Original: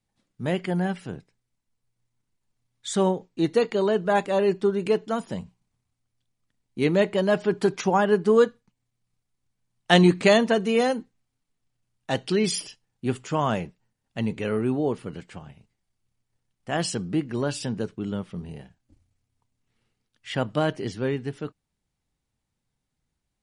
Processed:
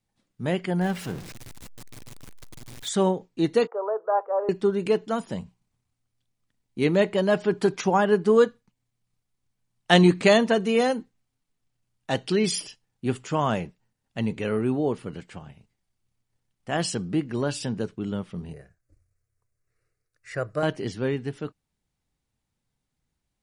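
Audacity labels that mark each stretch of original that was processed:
0.810000	2.890000	jump at every zero crossing of -35 dBFS
3.670000	4.490000	elliptic band-pass 470–1300 Hz, stop band 60 dB
18.530000	20.630000	static phaser centre 870 Hz, stages 6

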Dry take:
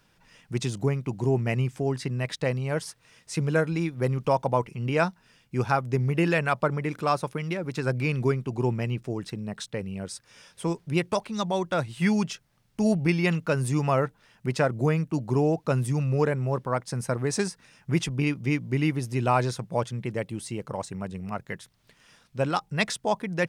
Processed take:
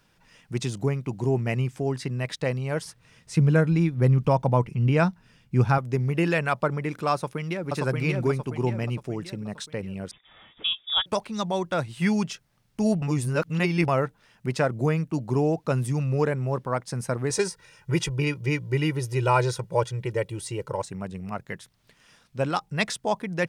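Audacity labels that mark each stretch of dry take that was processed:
2.850000	5.780000	tone controls bass +9 dB, treble -3 dB
7.130000	7.690000	echo throw 580 ms, feedback 45%, level -1 dB
10.110000	11.060000	frequency inversion carrier 3.6 kHz
13.020000	13.880000	reverse
17.300000	20.820000	comb 2.1 ms, depth 88%

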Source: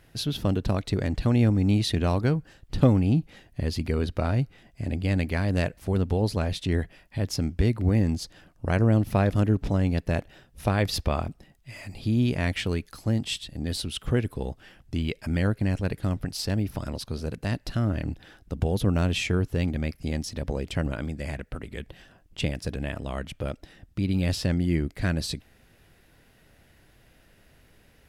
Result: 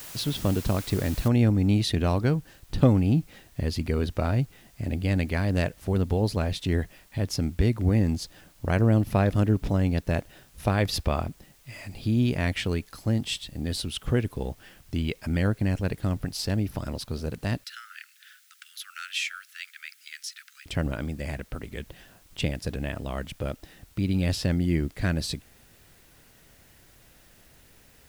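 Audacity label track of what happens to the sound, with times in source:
1.280000	1.280000	noise floor step -42 dB -60 dB
17.640000	20.660000	steep high-pass 1.3 kHz 96 dB/octave

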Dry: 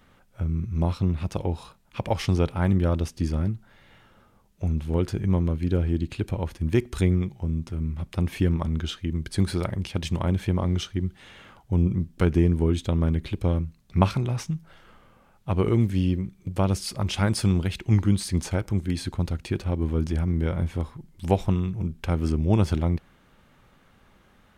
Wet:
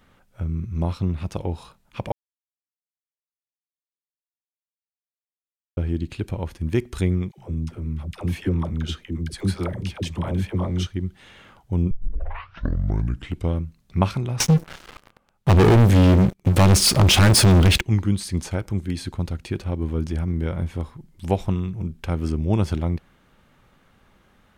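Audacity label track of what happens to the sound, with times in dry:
2.120000	5.770000	mute
7.310000	10.870000	phase dispersion lows, late by 71 ms, half as late at 530 Hz
11.910000	11.910000	tape start 1.62 s
14.400000	17.810000	waveshaping leveller passes 5

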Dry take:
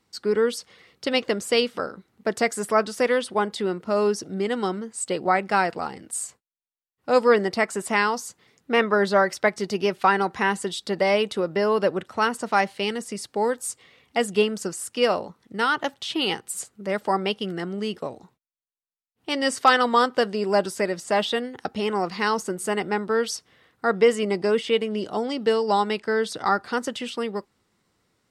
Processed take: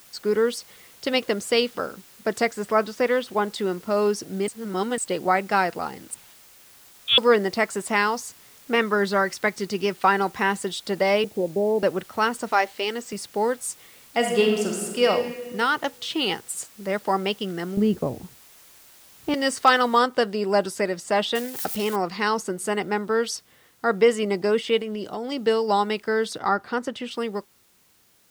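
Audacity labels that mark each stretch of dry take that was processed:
2.450000	3.450000	distance through air 96 m
4.480000	4.980000	reverse
6.140000	7.180000	frequency inversion carrier 3.9 kHz
8.750000	9.980000	peaking EQ 660 Hz -6 dB
11.240000	11.830000	steep low-pass 890 Hz 96 dB/octave
12.520000	13.130000	brick-wall FIR band-pass 220–8500 Hz
14.170000	15.060000	reverb throw, RT60 1.6 s, DRR 1.5 dB
17.770000	19.340000	tilt EQ -4.5 dB/octave
19.990000	19.990000	noise floor step -51 dB -61 dB
21.350000	21.960000	zero-crossing glitches of -24.5 dBFS
24.770000	25.320000	compression, threshold -26 dBFS
26.380000	27.110000	treble shelf 3.7 kHz -9 dB

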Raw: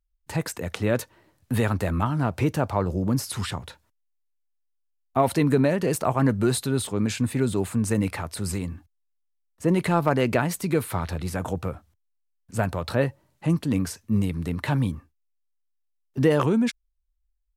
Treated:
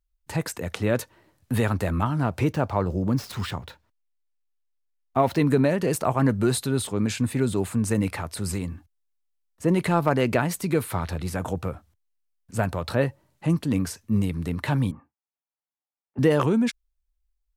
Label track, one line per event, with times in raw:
2.520000	5.390000	median filter over 5 samples
14.910000	16.190000	cabinet simulation 180–2100 Hz, peaks and dips at 390 Hz -7 dB, 840 Hz +8 dB, 1.7 kHz -4 dB

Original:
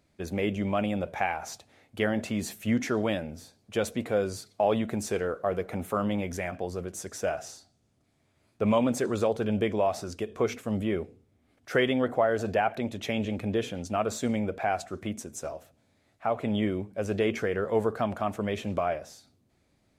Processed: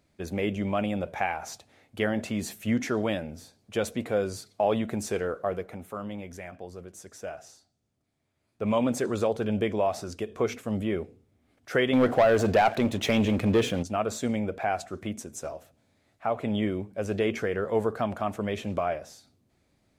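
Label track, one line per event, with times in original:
5.420000	8.840000	dip -8 dB, fades 0.37 s
11.930000	13.830000	waveshaping leveller passes 2

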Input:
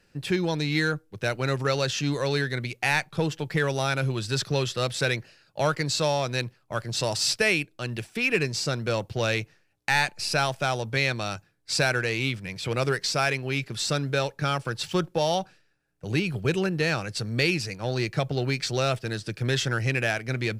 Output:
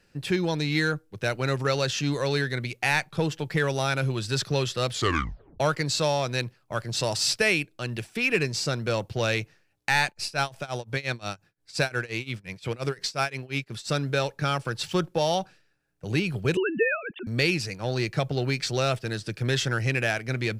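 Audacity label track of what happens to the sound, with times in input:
4.910000	4.910000	tape stop 0.69 s
10.060000	13.900000	tremolo 5.7 Hz, depth 93%
16.570000	17.270000	formants replaced by sine waves

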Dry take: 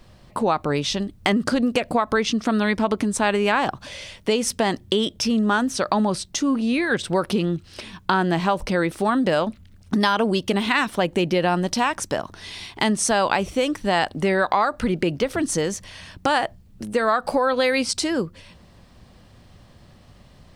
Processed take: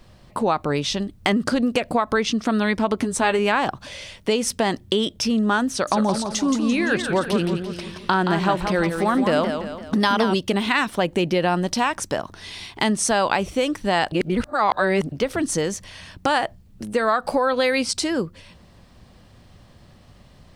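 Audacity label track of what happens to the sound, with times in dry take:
2.980000	3.390000	doubling 12 ms -7.5 dB
5.700000	10.350000	modulated delay 170 ms, feedback 48%, depth 123 cents, level -7 dB
14.120000	15.120000	reverse

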